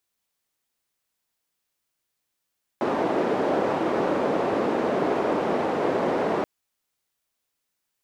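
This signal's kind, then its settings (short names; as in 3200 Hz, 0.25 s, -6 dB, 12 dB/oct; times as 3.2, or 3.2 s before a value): noise band 350–450 Hz, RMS -24 dBFS 3.63 s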